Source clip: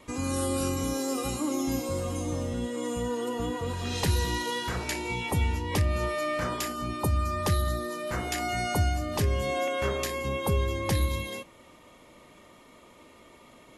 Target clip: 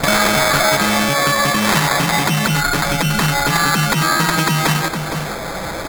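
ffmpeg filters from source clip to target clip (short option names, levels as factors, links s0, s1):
-filter_complex "[0:a]acrossover=split=3200[s0][s1];[s0]acompressor=threshold=0.00891:ratio=6[s2];[s2][s1]amix=inputs=2:normalize=0,asuperstop=centerf=2100:order=12:qfactor=0.91,lowshelf=f=270:g=10.5,bandreject=f=50:t=h:w=6,bandreject=f=100:t=h:w=6,bandreject=f=150:t=h:w=6,bandreject=f=200:t=h:w=6,bandreject=f=250:t=h:w=6,bandreject=f=300:t=h:w=6,asplit=2[s3][s4];[s4]adelay=14,volume=0.282[s5];[s3][s5]amix=inputs=2:normalize=0,acrusher=samples=36:mix=1:aa=0.000001,asplit=2[s6][s7];[s7]aecho=0:1:1078:0.237[s8];[s6][s8]amix=inputs=2:normalize=0,acrossover=split=400[s9][s10];[s9]acompressor=threshold=0.00251:ratio=2[s11];[s11][s10]amix=inputs=2:normalize=0,asetrate=103194,aresample=44100,alimiter=level_in=23.7:limit=0.891:release=50:level=0:latency=1,volume=0.891"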